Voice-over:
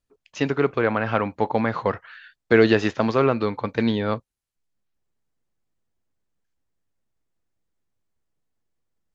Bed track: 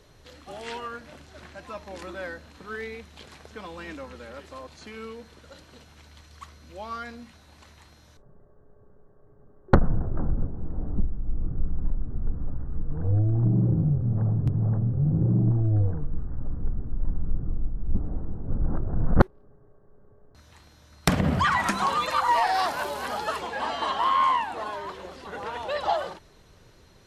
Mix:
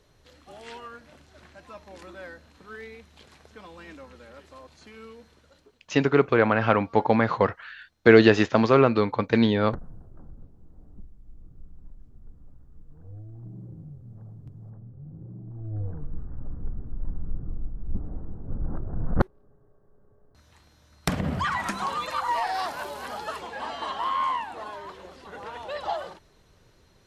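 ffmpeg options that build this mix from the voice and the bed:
ffmpeg -i stem1.wav -i stem2.wav -filter_complex "[0:a]adelay=5550,volume=1.5dB[link_01];[1:a]volume=9.5dB,afade=type=out:start_time=5.24:duration=0.54:silence=0.199526,afade=type=in:start_time=15.49:duration=0.6:silence=0.16788[link_02];[link_01][link_02]amix=inputs=2:normalize=0" out.wav

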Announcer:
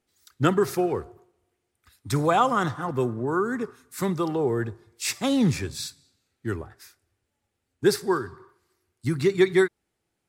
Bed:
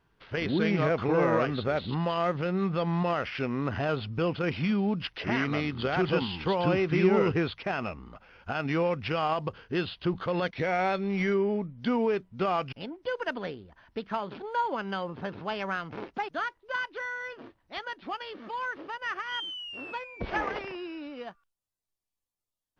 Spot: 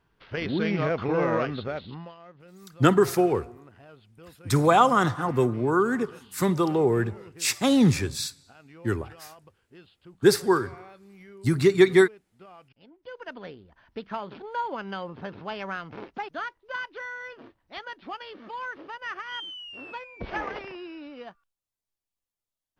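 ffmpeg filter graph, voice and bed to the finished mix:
ffmpeg -i stem1.wav -i stem2.wav -filter_complex "[0:a]adelay=2400,volume=2.5dB[link_01];[1:a]volume=20dB,afade=type=out:start_time=1.41:duration=0.76:silence=0.0841395,afade=type=in:start_time=12.75:duration=1.14:silence=0.1[link_02];[link_01][link_02]amix=inputs=2:normalize=0" out.wav

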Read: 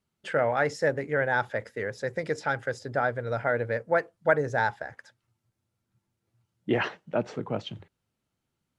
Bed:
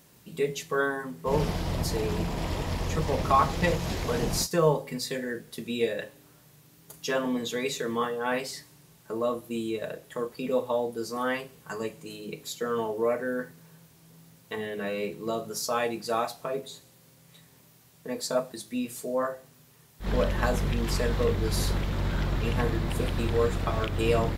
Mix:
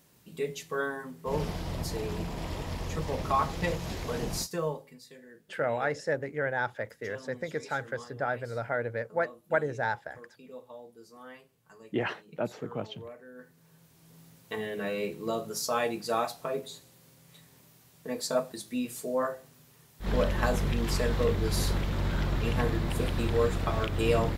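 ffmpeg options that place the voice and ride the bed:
ffmpeg -i stem1.wav -i stem2.wav -filter_complex "[0:a]adelay=5250,volume=-4.5dB[link_01];[1:a]volume=13dB,afade=type=out:start_time=4.35:duration=0.62:silence=0.199526,afade=type=in:start_time=13.34:duration=0.86:silence=0.125893[link_02];[link_01][link_02]amix=inputs=2:normalize=0" out.wav

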